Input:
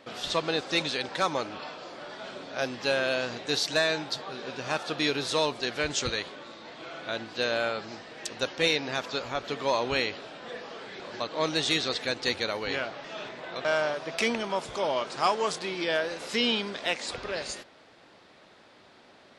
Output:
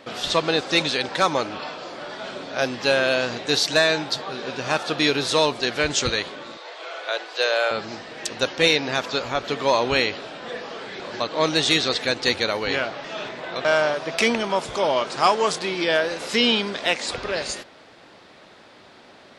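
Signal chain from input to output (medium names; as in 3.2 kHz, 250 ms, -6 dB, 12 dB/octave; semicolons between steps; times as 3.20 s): 6.57–7.71 s: steep high-pass 410 Hz 36 dB/octave; trim +7 dB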